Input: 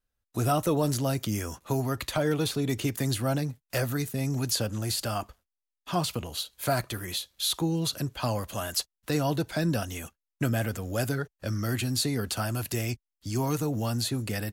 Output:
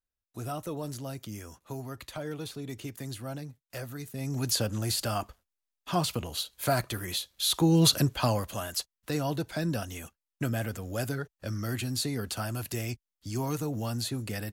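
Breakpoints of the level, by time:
0:03.98 −10.5 dB
0:04.49 0 dB
0:07.45 0 dB
0:07.85 +8.5 dB
0:08.70 −3.5 dB

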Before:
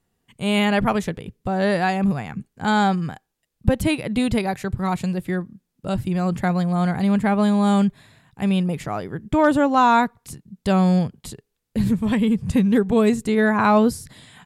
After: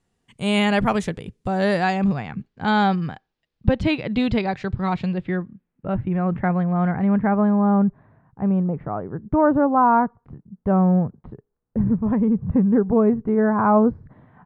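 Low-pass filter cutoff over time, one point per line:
low-pass filter 24 dB per octave
0:01.66 9,800 Hz
0:02.29 4,700 Hz
0:04.83 4,700 Hz
0:05.89 2,100 Hz
0:06.88 2,100 Hz
0:07.78 1,300 Hz

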